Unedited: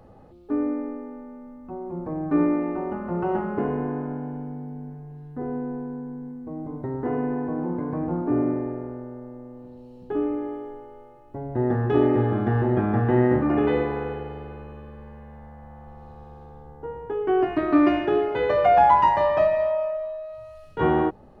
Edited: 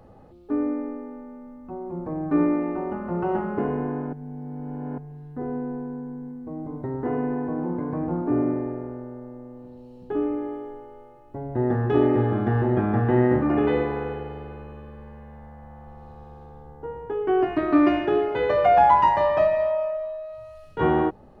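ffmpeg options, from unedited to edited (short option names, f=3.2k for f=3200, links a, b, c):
-filter_complex "[0:a]asplit=3[a][b][c];[a]atrim=end=4.132[d];[b]atrim=start=4.128:end=4.982,asetpts=PTS-STARTPTS,areverse[e];[c]atrim=start=4.978[f];[d][e]acrossfade=d=0.004:c1=hsin:c2=hsin[g];[g][f]acrossfade=d=0.004:c1=hsin:c2=hsin"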